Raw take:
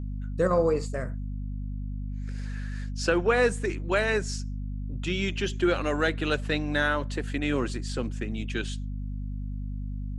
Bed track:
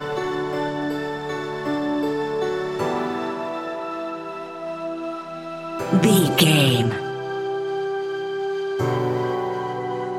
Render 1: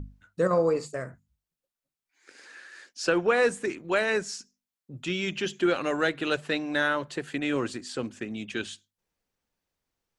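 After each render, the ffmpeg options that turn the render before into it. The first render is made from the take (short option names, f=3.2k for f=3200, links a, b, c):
-af "bandreject=f=50:t=h:w=6,bandreject=f=100:t=h:w=6,bandreject=f=150:t=h:w=6,bandreject=f=200:t=h:w=6,bandreject=f=250:t=h:w=6"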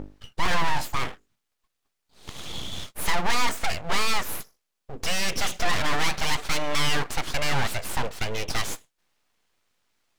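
-filter_complex "[0:a]asplit=2[a][b];[b]highpass=f=720:p=1,volume=25dB,asoftclip=type=tanh:threshold=-11dB[c];[a][c]amix=inputs=2:normalize=0,lowpass=f=2.6k:p=1,volume=-6dB,aeval=exprs='abs(val(0))':c=same"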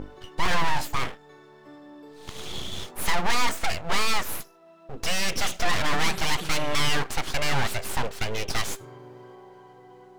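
-filter_complex "[1:a]volume=-23dB[a];[0:a][a]amix=inputs=2:normalize=0"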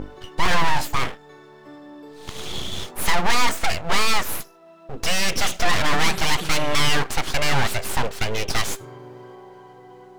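-af "volume=4.5dB"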